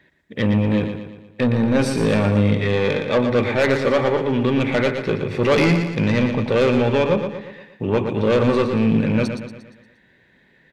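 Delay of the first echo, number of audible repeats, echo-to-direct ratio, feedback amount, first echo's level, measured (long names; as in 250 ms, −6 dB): 117 ms, 5, −6.5 dB, 49%, −7.5 dB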